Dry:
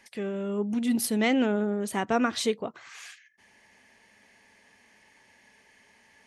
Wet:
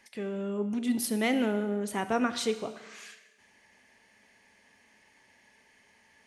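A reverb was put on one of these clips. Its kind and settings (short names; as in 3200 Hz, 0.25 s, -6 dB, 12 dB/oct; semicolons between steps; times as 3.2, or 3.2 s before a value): Schroeder reverb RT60 1.2 s, combs from 25 ms, DRR 11 dB; gain -3 dB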